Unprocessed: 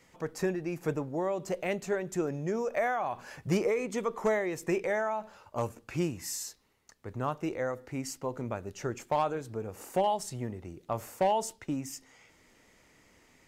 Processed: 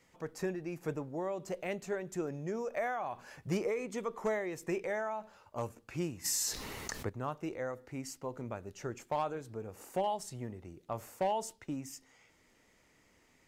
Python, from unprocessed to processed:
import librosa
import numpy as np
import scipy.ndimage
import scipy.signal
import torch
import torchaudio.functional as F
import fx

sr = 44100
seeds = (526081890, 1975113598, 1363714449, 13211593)

y = fx.env_flatten(x, sr, amount_pct=70, at=(6.24, 7.08), fade=0.02)
y = y * librosa.db_to_amplitude(-5.5)